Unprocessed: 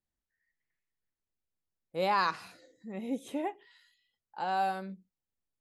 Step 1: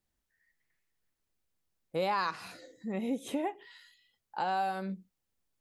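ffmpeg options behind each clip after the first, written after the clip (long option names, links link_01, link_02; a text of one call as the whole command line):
ffmpeg -i in.wav -af "acompressor=threshold=-38dB:ratio=3,volume=7dB" out.wav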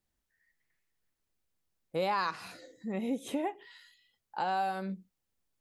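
ffmpeg -i in.wav -af anull out.wav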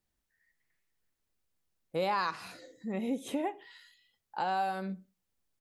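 ffmpeg -i in.wav -filter_complex "[0:a]asplit=2[link_01][link_02];[link_02]adelay=64,lowpass=frequency=2400:poles=1,volume=-21.5dB,asplit=2[link_03][link_04];[link_04]adelay=64,lowpass=frequency=2400:poles=1,volume=0.38,asplit=2[link_05][link_06];[link_06]adelay=64,lowpass=frequency=2400:poles=1,volume=0.38[link_07];[link_01][link_03][link_05][link_07]amix=inputs=4:normalize=0" out.wav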